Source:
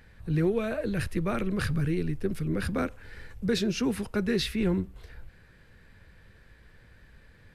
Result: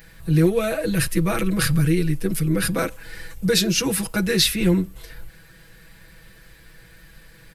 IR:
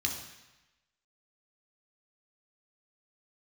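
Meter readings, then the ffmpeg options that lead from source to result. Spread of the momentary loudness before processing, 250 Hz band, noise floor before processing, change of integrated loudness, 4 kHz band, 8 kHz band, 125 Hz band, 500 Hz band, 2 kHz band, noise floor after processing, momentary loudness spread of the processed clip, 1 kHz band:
6 LU, +7.0 dB, -56 dBFS, +8.5 dB, +13.0 dB, +18.0 dB, +8.5 dB, +6.5 dB, +9.0 dB, -49 dBFS, 8 LU, +7.0 dB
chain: -af "aemphasis=mode=production:type=75kf,aecho=1:1:6.1:0.99,volume=3.5dB"

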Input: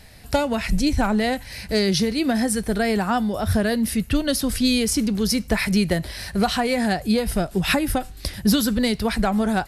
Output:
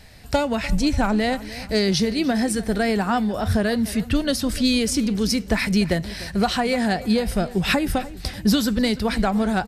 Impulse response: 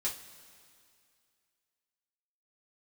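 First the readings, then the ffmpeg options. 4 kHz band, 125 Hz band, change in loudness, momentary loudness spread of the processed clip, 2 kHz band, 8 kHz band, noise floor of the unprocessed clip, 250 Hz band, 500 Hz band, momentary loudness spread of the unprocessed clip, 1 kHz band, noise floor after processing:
0.0 dB, 0.0 dB, 0.0 dB, 4 LU, 0.0 dB, -2.5 dB, -40 dBFS, 0.0 dB, 0.0 dB, 4 LU, 0.0 dB, -37 dBFS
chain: -filter_complex "[0:a]equalizer=f=11k:w=4.6:g=-13,asplit=2[a][b];[b]adelay=296,lowpass=f=4.8k:p=1,volume=-17dB,asplit=2[c][d];[d]adelay=296,lowpass=f=4.8k:p=1,volume=0.51,asplit=2[e][f];[f]adelay=296,lowpass=f=4.8k:p=1,volume=0.51,asplit=2[g][h];[h]adelay=296,lowpass=f=4.8k:p=1,volume=0.51[i];[a][c][e][g][i]amix=inputs=5:normalize=0"

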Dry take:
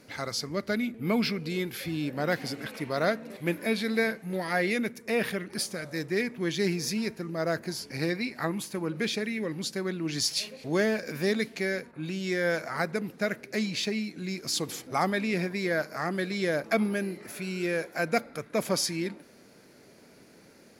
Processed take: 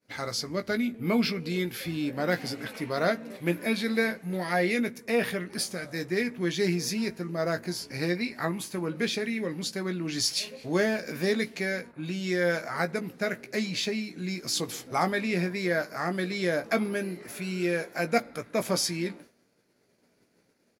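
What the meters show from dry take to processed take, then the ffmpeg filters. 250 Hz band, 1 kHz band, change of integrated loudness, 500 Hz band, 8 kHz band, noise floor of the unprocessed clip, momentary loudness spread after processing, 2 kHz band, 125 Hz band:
+0.5 dB, +1.0 dB, +0.5 dB, +0.5 dB, +0.5 dB, -55 dBFS, 6 LU, +0.5 dB, +1.0 dB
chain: -filter_complex "[0:a]asplit=2[a][b];[b]adelay=17,volume=-8dB[c];[a][c]amix=inputs=2:normalize=0,agate=range=-33dB:threshold=-44dB:ratio=3:detection=peak"

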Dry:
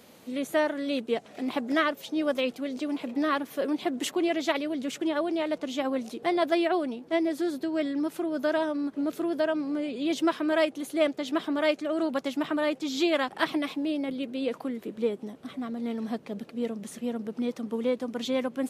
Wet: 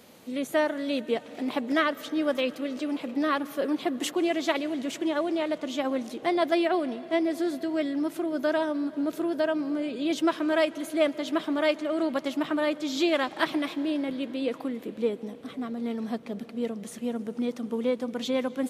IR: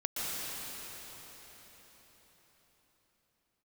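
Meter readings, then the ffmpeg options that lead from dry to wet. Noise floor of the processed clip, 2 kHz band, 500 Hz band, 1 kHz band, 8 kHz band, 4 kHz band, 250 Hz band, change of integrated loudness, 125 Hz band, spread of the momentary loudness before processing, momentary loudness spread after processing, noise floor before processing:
-45 dBFS, +0.5 dB, +0.5 dB, +0.5 dB, +0.5 dB, +0.5 dB, +0.5 dB, +0.5 dB, n/a, 7 LU, 7 LU, -52 dBFS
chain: -filter_complex "[0:a]asplit=2[a][b];[1:a]atrim=start_sample=2205[c];[b][c]afir=irnorm=-1:irlink=0,volume=-22.5dB[d];[a][d]amix=inputs=2:normalize=0"

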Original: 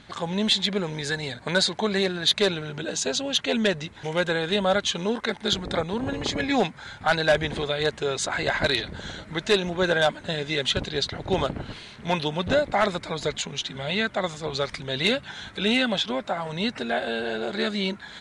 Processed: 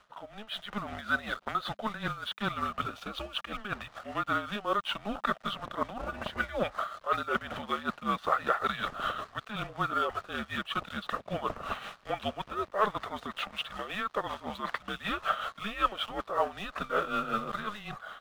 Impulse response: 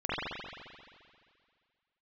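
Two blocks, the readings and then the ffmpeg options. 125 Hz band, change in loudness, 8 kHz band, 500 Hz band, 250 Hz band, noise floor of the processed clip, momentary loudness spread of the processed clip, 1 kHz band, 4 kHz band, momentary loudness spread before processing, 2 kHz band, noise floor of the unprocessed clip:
-11.5 dB, -8.0 dB, -21.0 dB, -11.5 dB, -11.5 dB, -57 dBFS, 8 LU, -0.5 dB, -13.0 dB, 8 LU, -7.5 dB, -46 dBFS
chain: -af "areverse,acompressor=threshold=-34dB:ratio=8,areverse,highpass=490,equalizer=f=560:t=q:w=4:g=-9,equalizer=f=830:t=q:w=4:g=5,equalizer=f=1.4k:t=q:w=4:g=9,equalizer=f=2.3k:t=q:w=4:g=-6,lowpass=f=3k:w=0.5412,lowpass=f=3k:w=1.3066,aeval=exprs='sgn(val(0))*max(abs(val(0))-0.00119,0)':c=same,tremolo=f=5.3:d=0.67,afreqshift=-210,dynaudnorm=f=120:g=7:m=13.5dB,volume=-3dB"

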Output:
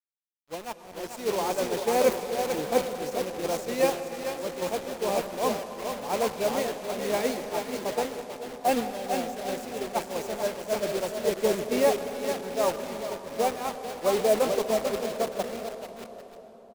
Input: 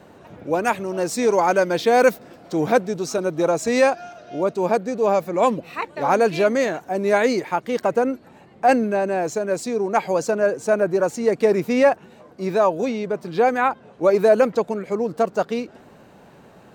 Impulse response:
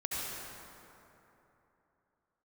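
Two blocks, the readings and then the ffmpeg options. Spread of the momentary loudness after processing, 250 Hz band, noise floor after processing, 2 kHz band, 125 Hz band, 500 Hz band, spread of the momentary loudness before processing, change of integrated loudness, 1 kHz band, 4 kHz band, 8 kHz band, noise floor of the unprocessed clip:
12 LU, -9.5 dB, -49 dBFS, -10.5 dB, -10.0 dB, -8.0 dB, 8 LU, -8.0 dB, -8.5 dB, 0.0 dB, -1.5 dB, -49 dBFS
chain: -filter_complex "[0:a]equalizer=f=1.5k:w=3.7:g=-11,aecho=1:1:440|792|1074|1299|1479:0.631|0.398|0.251|0.158|0.1,acrusher=bits=3:mix=0:aa=0.000001,agate=range=-33dB:threshold=-12dB:ratio=3:detection=peak,asplit=2[a][b];[1:a]atrim=start_sample=2205,asetrate=29106,aresample=44100[c];[b][c]afir=irnorm=-1:irlink=0,volume=-16dB[d];[a][d]amix=inputs=2:normalize=0,volume=-8dB"

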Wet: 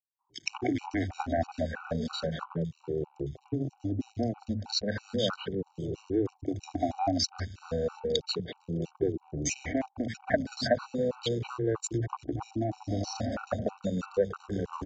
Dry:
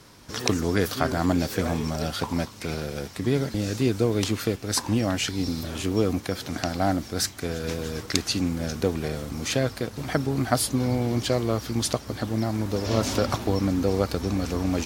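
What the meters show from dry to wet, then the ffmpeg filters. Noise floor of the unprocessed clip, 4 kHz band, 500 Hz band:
-43 dBFS, -5.5 dB, -4.5 dB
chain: -filter_complex "[0:a]afftfilt=real='re*pow(10,20/40*sin(2*PI*(0.67*log(max(b,1)*sr/1024/100)/log(2)-(-0.34)*(pts-256)/sr)))':imag='im*pow(10,20/40*sin(2*PI*(0.67*log(max(b,1)*sr/1024/100)/log(2)-(-0.34)*(pts-256)/sr)))':win_size=1024:overlap=0.75,afwtdn=0.0355,asplit=2[a][b];[b]acrusher=samples=14:mix=1:aa=0.000001,volume=-12dB[c];[a][c]amix=inputs=2:normalize=0,acompressor=threshold=-23dB:ratio=2,acrossover=split=740[d][e];[d]highpass=81[f];[e]aeval=exprs='sgn(val(0))*max(abs(val(0))-0.00631,0)':c=same[g];[f][g]amix=inputs=2:normalize=0,acrossover=split=170|2400[h][i][j];[i]adelay=190[k];[h]adelay=250[l];[l][k][j]amix=inputs=3:normalize=0,aresample=16000,aresample=44100,acrossover=split=440[m][n];[m]acompressor=threshold=-32dB:ratio=2[o];[o][n]amix=inputs=2:normalize=0,afftfilt=real='re*gt(sin(2*PI*3.1*pts/sr)*(1-2*mod(floor(b*sr/1024/760),2)),0)':imag='im*gt(sin(2*PI*3.1*pts/sr)*(1-2*mod(floor(b*sr/1024/760),2)),0)':win_size=1024:overlap=0.75"

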